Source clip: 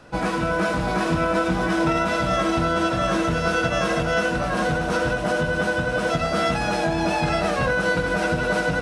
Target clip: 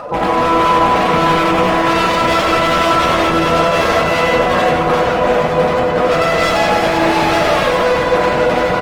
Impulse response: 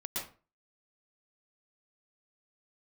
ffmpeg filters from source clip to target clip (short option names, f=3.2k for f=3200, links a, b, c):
-filter_complex "[0:a]equalizer=f=1.1k:t=o:w=2.8:g=11.5,acontrast=55,bandreject=f=1.5k:w=7.4,asplit=2[a][b];[1:a]atrim=start_sample=2205,adelay=58[c];[b][c]afir=irnorm=-1:irlink=0,volume=-19dB[d];[a][d]amix=inputs=2:normalize=0,afftdn=nr=23:nf=-25,acompressor=mode=upward:threshold=-16dB:ratio=2.5,aeval=exprs='0.398*(abs(mod(val(0)/0.398+3,4)-2)-1)':c=same,asplit=2[e][f];[f]adelay=37,volume=-7.5dB[g];[e][g]amix=inputs=2:normalize=0,adynamicequalizer=threshold=0.0355:dfrequency=480:dqfactor=2.3:tfrequency=480:tqfactor=2.3:attack=5:release=100:ratio=0.375:range=2.5:mode=boostabove:tftype=bell,alimiter=limit=-11.5dB:level=0:latency=1,aecho=1:1:45|92|161|173|377|485:0.133|0.562|0.376|0.398|0.376|0.335,volume=2dB" -ar 48000 -c:a libopus -b:a 20k